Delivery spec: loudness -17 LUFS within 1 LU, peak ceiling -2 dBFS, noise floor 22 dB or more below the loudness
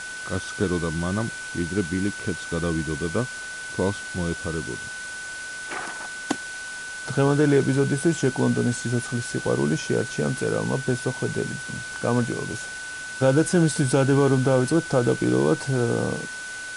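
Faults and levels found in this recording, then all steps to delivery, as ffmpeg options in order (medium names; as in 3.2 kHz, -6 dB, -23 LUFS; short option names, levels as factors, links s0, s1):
steady tone 1.5 kHz; tone level -33 dBFS; noise floor -35 dBFS; noise floor target -47 dBFS; loudness -24.5 LUFS; peak level -7.5 dBFS; loudness target -17.0 LUFS
-> -af "bandreject=f=1500:w=30"
-af "afftdn=nr=12:nf=-35"
-af "volume=2.37,alimiter=limit=0.794:level=0:latency=1"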